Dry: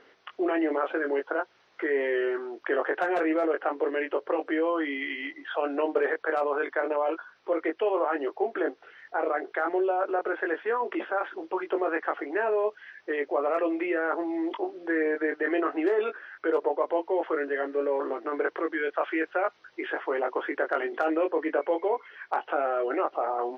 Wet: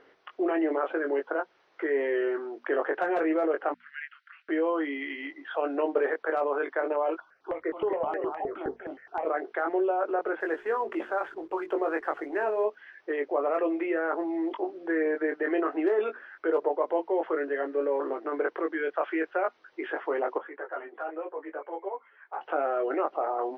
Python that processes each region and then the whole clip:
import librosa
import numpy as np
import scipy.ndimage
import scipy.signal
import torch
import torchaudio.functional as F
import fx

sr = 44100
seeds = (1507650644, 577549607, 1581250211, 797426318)

y = fx.chain(x, sr, fx.cheby1_highpass(hz=1400.0, order=6),
    fx.air_absorb(metres=110.0), at=(3.74, 4.49))
y = fx.chain(y, sr, fx.echo_single(ms=243, db=-5.5),
    fx.phaser_held(hz=9.6, low_hz=450.0, high_hz=1700.0), at=(7.2, 9.25))
y = fx.chain(y, sr, fx.hum_notches(base_hz=60, count=7),
    fx.backlash(play_db=-50.5), at=(10.4, 12.65))
y = fx.chain(y, sr, fx.highpass(hz=990.0, slope=12),
    fx.tilt_eq(slope=-6.0),
    fx.ensemble(), at=(20.38, 22.41))
y = fx.high_shelf(y, sr, hz=2300.0, db=-8.0)
y = fx.hum_notches(y, sr, base_hz=60, count=4)